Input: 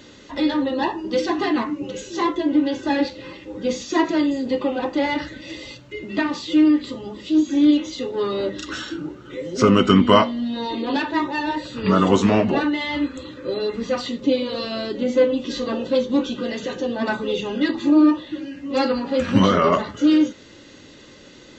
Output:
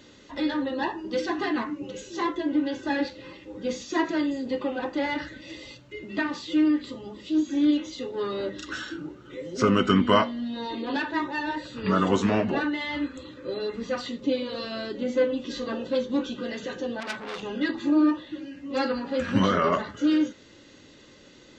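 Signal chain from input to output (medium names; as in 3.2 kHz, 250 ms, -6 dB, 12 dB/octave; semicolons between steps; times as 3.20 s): dynamic bell 1.6 kHz, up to +6 dB, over -44 dBFS, Q 3.2; 17.00–17.43 s: transformer saturation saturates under 3.6 kHz; trim -6.5 dB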